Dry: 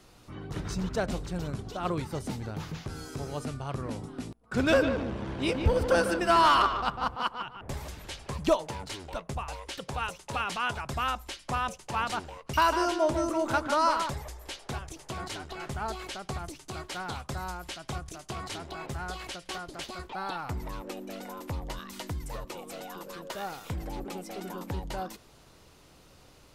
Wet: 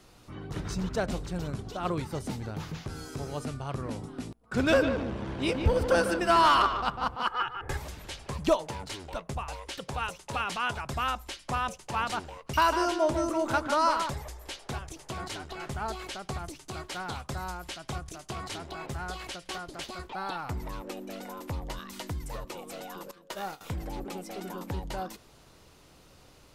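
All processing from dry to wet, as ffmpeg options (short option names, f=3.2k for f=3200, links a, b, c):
-filter_complex "[0:a]asettb=1/sr,asplit=3[a][b][c];[a]atrim=end=7.274[d];[b]atrim=start=7.27:end=7.77,asetpts=PTS-STARTPTS,afade=t=in:d=0.004:c=qsin,afade=t=out:st=0.496:d=0.004:c=qsin,equalizer=f=1.6k:w=1.9:g=11.5,aecho=1:1:2.4:0.74,atrim=end_sample=22050[e];[c]atrim=start=7.766[f];[d][e]acrossfade=d=0.004:c1=hsin:c2=qsin[g];[g][f]acrossfade=d=0.004:c1=qsin:c2=hsin,asettb=1/sr,asplit=3[h][i][j];[h]atrim=end=23.114[k];[i]atrim=start=23.11:end=23.61,asetpts=PTS-STARTPTS,afade=t=in:d=0.004:c=qsin,afade=t=out:st=0.496:d=0.004:c=qsin,agate=range=-15dB:threshold=-40dB:ratio=16:release=100:detection=peak,asplit=2[l][m];[m]adelay=26,volume=-13.5dB[n];[l][n]amix=inputs=2:normalize=0,atrim=end_sample=22050[o];[j]atrim=start=23.606[p];[k][o]acrossfade=d=0.004:c1=hsin:c2=qsin[q];[q][p]acrossfade=d=0.004:c1=qsin:c2=hsin"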